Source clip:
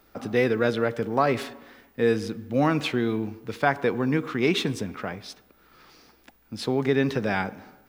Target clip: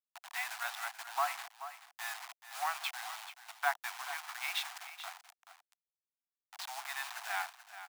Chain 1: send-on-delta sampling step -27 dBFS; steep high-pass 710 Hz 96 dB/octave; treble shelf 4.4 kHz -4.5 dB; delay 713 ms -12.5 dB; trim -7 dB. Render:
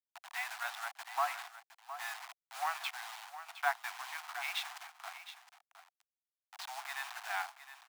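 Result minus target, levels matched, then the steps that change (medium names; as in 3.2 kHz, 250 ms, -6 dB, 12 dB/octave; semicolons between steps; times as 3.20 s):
echo 281 ms late; 8 kHz band -2.5 dB
change: delay 432 ms -12.5 dB; remove: treble shelf 4.4 kHz -4.5 dB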